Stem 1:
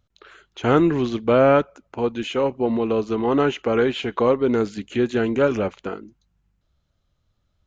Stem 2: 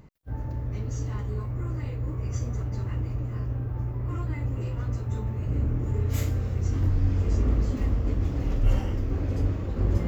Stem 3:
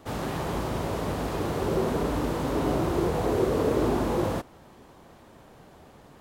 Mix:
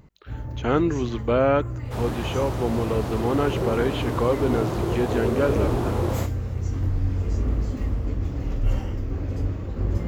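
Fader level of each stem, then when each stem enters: −4.5, −0.5, −1.0 decibels; 0.00, 0.00, 1.85 seconds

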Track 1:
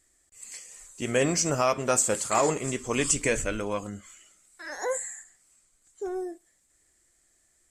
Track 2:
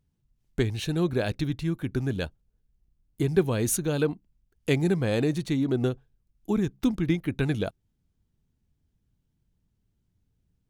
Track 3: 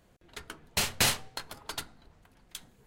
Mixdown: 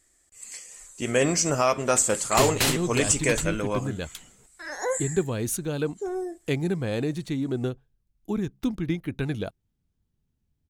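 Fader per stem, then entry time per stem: +2.0, −2.5, +1.0 decibels; 0.00, 1.80, 1.60 seconds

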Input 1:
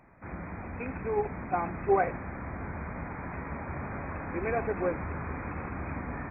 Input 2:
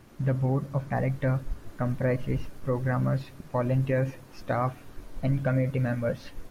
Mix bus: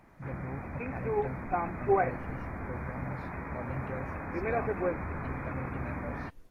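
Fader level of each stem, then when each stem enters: −1.0, −14.5 decibels; 0.00, 0.00 seconds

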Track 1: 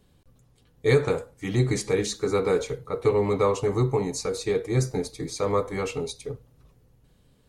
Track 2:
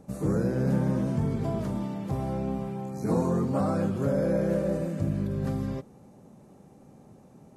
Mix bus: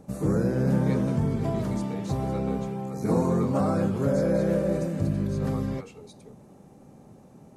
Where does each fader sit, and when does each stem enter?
−16.5, +2.0 decibels; 0.00, 0.00 seconds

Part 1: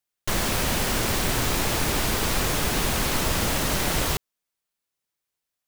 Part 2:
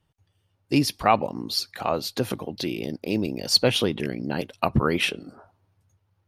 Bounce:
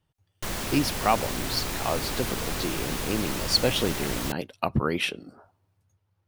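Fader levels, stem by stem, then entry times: −7.0, −3.5 decibels; 0.15, 0.00 seconds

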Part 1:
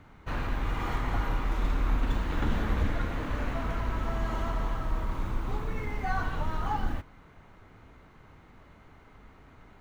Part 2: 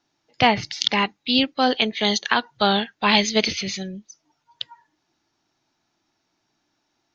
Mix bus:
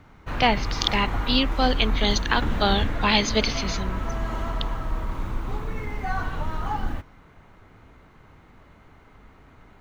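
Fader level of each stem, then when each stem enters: +2.5, −3.0 decibels; 0.00, 0.00 seconds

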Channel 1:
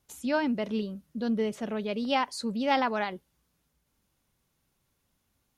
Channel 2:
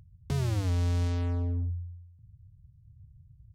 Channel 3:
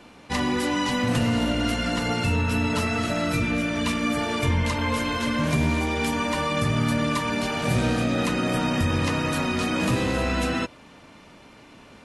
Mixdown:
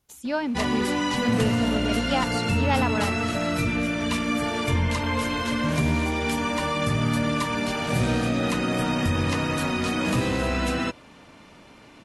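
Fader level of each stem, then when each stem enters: +0.5 dB, muted, −0.5 dB; 0.00 s, muted, 0.25 s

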